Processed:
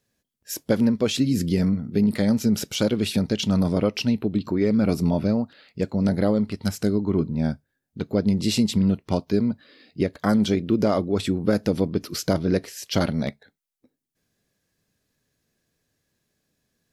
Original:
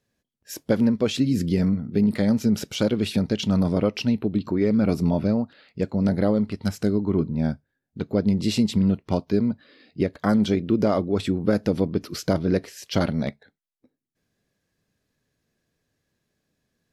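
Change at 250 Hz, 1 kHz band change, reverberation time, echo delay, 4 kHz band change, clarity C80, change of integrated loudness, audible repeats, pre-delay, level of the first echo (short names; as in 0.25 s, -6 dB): 0.0 dB, 0.0 dB, none, none, +2.5 dB, none, 0.0 dB, none, none, none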